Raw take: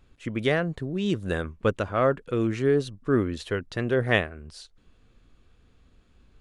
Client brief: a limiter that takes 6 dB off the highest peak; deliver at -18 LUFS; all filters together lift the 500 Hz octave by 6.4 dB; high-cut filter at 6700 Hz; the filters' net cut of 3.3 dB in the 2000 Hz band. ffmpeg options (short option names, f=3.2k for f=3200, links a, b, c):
-af "lowpass=6.7k,equalizer=f=500:t=o:g=8,equalizer=f=2k:t=o:g=-4.5,volume=6dB,alimiter=limit=-6dB:level=0:latency=1"